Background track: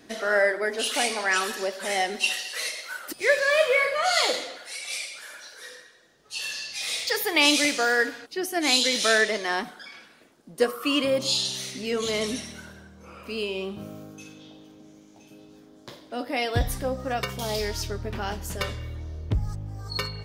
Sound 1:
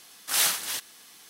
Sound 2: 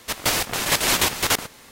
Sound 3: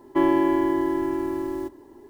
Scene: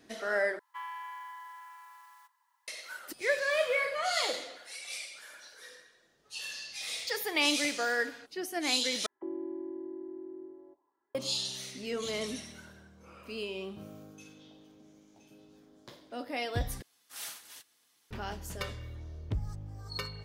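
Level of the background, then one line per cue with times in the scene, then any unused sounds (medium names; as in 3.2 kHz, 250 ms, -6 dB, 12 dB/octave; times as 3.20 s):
background track -8 dB
0.59 s: replace with 3 -11.5 dB + steep high-pass 930 Hz 72 dB/octave
9.06 s: replace with 3 -15 dB + auto-wah 390–1800 Hz, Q 3.6, down, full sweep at -23.5 dBFS
16.82 s: replace with 1 -17.5 dB + comb of notches 190 Hz
not used: 2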